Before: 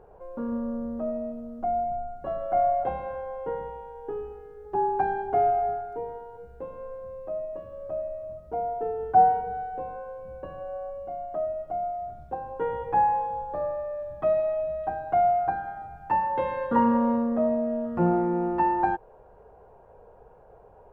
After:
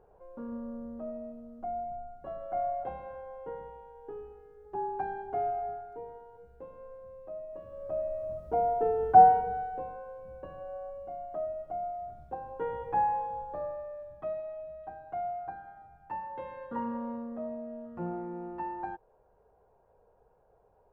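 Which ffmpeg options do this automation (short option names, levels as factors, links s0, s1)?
-af "volume=1.26,afade=t=in:st=7.45:d=0.95:silence=0.281838,afade=t=out:st=9.09:d=0.88:silence=0.421697,afade=t=out:st=13.39:d=1.03:silence=0.398107"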